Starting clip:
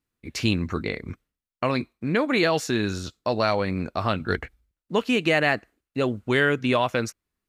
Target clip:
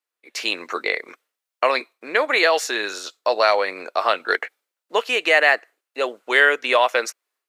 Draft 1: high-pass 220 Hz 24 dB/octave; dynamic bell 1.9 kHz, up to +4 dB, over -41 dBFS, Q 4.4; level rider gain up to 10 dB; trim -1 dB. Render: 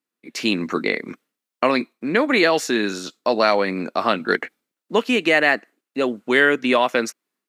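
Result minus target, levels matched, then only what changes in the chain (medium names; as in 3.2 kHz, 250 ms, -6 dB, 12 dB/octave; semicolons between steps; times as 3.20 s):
250 Hz band +14.0 dB
change: high-pass 470 Hz 24 dB/octave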